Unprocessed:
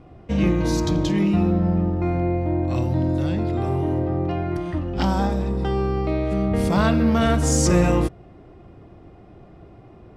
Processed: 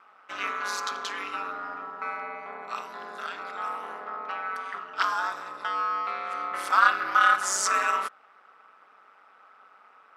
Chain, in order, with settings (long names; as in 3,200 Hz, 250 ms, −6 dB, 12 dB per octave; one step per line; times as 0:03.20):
ring modulation 96 Hz
high-pass with resonance 1,300 Hz, resonance Q 5.9